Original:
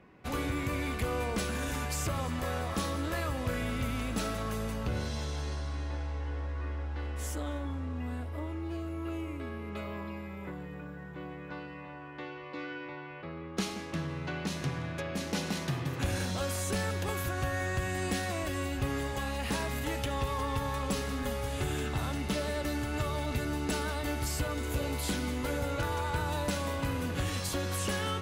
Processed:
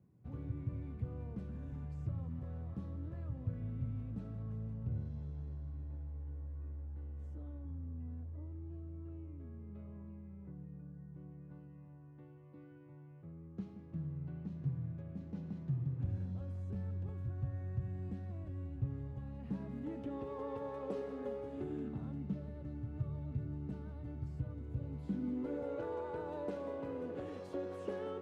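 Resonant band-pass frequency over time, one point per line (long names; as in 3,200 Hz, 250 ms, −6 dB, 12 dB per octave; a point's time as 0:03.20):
resonant band-pass, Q 2.3
0:19.21 120 Hz
0:20.48 440 Hz
0:21.23 440 Hz
0:22.47 130 Hz
0:24.87 130 Hz
0:25.66 430 Hz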